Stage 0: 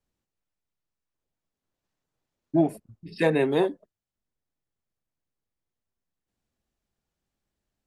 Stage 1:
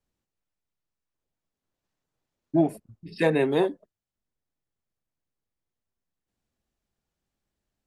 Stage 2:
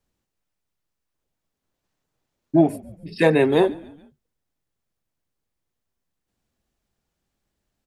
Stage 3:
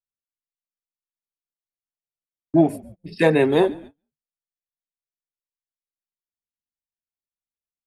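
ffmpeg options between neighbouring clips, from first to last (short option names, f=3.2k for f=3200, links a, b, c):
-af anull
-filter_complex "[0:a]asplit=4[a][b][c][d];[b]adelay=141,afreqshift=-48,volume=-22dB[e];[c]adelay=282,afreqshift=-96,volume=-28dB[f];[d]adelay=423,afreqshift=-144,volume=-34dB[g];[a][e][f][g]amix=inputs=4:normalize=0,volume=5.5dB"
-af "agate=range=-30dB:threshold=-38dB:ratio=16:detection=peak"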